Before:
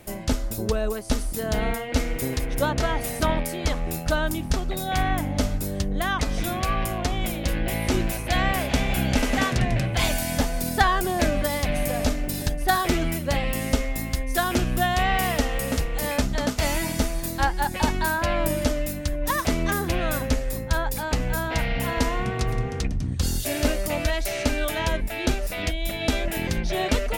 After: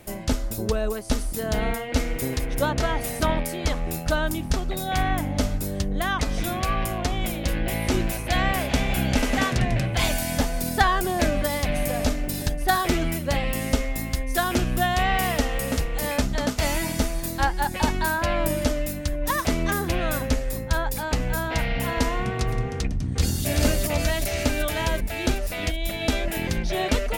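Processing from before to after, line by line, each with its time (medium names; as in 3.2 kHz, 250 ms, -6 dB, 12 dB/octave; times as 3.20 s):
22.77–23.48 s: echo throw 380 ms, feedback 65%, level -1 dB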